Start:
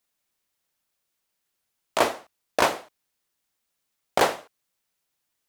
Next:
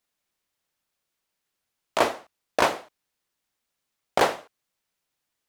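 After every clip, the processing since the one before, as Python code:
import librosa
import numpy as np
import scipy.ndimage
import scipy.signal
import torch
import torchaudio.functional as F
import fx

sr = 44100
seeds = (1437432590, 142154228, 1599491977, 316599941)

y = fx.high_shelf(x, sr, hz=7100.0, db=-5.5)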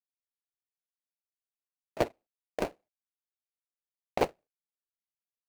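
y = scipy.signal.medfilt(x, 41)
y = fx.upward_expand(y, sr, threshold_db=-41.0, expansion=2.5)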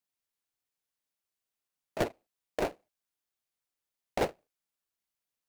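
y = 10.0 ** (-28.5 / 20.0) * np.tanh(x / 10.0 ** (-28.5 / 20.0))
y = y * librosa.db_to_amplitude(6.0)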